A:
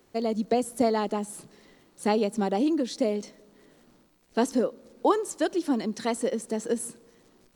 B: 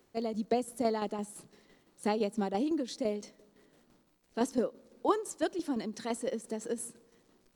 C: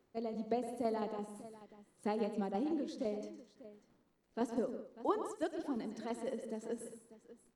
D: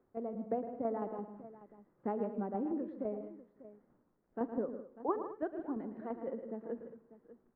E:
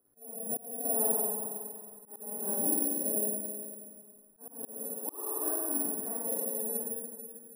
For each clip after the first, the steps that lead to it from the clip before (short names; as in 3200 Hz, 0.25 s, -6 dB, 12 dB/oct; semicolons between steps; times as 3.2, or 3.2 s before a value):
tremolo saw down 5.9 Hz, depth 55%; gain -4 dB
high shelf 2900 Hz -9 dB; on a send: tapped delay 46/111/155/214/594 ms -19.5/-11/-12.5/-17.5/-16.5 dB; on the sum: gain -5.5 dB
LPF 1600 Hz 24 dB/oct
spring tank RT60 1.8 s, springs 46/53 ms, chirp 75 ms, DRR -7.5 dB; careless resampling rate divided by 4×, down none, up zero stuff; auto swell 0.401 s; gain -7.5 dB